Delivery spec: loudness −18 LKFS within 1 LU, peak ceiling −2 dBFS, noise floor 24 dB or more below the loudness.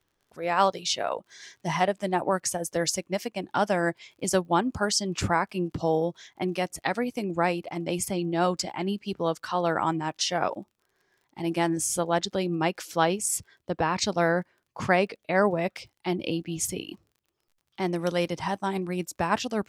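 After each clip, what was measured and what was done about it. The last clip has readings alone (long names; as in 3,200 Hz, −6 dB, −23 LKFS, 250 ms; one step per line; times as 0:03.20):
crackle rate 37 per second; integrated loudness −27.5 LKFS; sample peak −8.0 dBFS; target loudness −18.0 LKFS
→ click removal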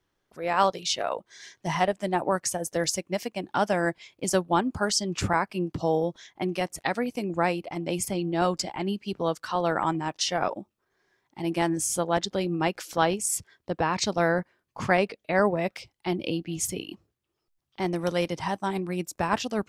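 crackle rate 0.10 per second; integrated loudness −28.0 LKFS; sample peak −8.0 dBFS; target loudness −18.0 LKFS
→ level +10 dB
brickwall limiter −2 dBFS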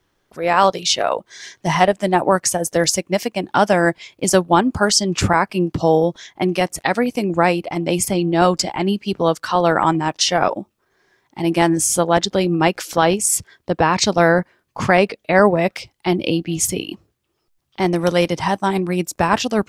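integrated loudness −18.0 LKFS; sample peak −2.0 dBFS; background noise floor −70 dBFS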